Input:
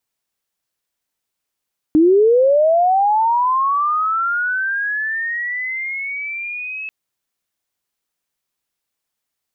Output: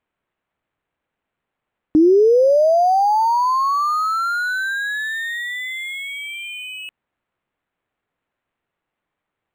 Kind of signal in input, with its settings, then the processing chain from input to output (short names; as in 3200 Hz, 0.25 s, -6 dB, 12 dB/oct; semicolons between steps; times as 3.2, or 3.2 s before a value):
chirp linear 300 Hz -> 2600 Hz -8 dBFS -> -25 dBFS 4.94 s
decimation joined by straight lines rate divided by 8×